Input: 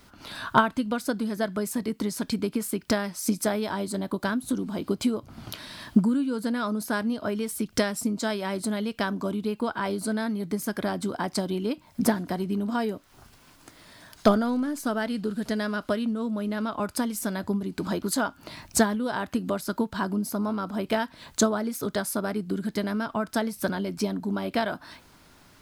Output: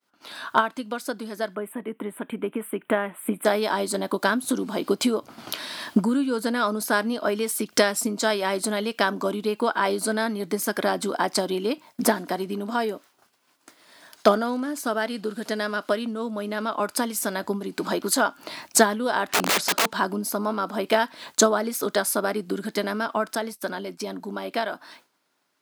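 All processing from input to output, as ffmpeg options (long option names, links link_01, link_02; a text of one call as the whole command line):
ffmpeg -i in.wav -filter_complex "[0:a]asettb=1/sr,asplit=3[link_01][link_02][link_03];[link_01]atrim=end=1.554[link_04];[link_02]atrim=start=1.55:end=3.45,asetpts=PTS-STARTPTS,afade=type=in:duration=0.004:curve=qsin,afade=type=out:start_time=1.896:duration=0.004:curve=qsin,asuperstop=centerf=5400:order=8:qfactor=1,highshelf=frequency=4300:gain=-10.5[link_05];[link_03]atrim=start=3.446[link_06];[link_04][link_05]acrossfade=duration=0.004:curve1=hsin:curve2=qsin[link_07];[link_07][link_06]acrossfade=duration=0.004:curve1=qsin:curve2=hsin,asettb=1/sr,asplit=3[link_08][link_09][link_10];[link_08]atrim=end=19.294[link_11];[link_09]atrim=start=19.29:end=19.92,asetpts=PTS-STARTPTS,afade=type=in:duration=0.004:curve=qsin,afade=type=out:start_time=0.626:duration=0.004:curve=qsin,lowpass=7300,acontrast=83,aeval=exprs='(mod(11.2*val(0)+1,2)-1)/11.2':channel_layout=same[link_12];[link_10]atrim=start=19.916[link_13];[link_11][link_12]acrossfade=duration=0.004:curve1=hsin:curve2=qsin[link_14];[link_14][link_13]acrossfade=duration=0.004:curve1=qsin:curve2=hsin,asettb=1/sr,asplit=3[link_15][link_16][link_17];[link_15]atrim=end=23.354[link_18];[link_16]atrim=start=23.35:end=24.07,asetpts=PTS-STARTPTS,afade=type=in:duration=0.004:curve=qsin,afade=type=out:start_time=0.716:duration=0.004:curve=qsin,agate=range=-33dB:threshold=-33dB:ratio=3:release=100:detection=peak,acompressor=threshold=-31dB:ratio=1.5:attack=3.2:release=140:knee=1:detection=peak[link_19];[link_17]atrim=start=24.066[link_20];[link_18][link_19]acrossfade=duration=0.004:curve1=hsin:curve2=qsin[link_21];[link_21][link_20]acrossfade=duration=0.004:curve1=qsin:curve2=hsin,highpass=330,agate=range=-33dB:threshold=-46dB:ratio=3:detection=peak,dynaudnorm=framelen=280:gausssize=17:maxgain=9dB" out.wav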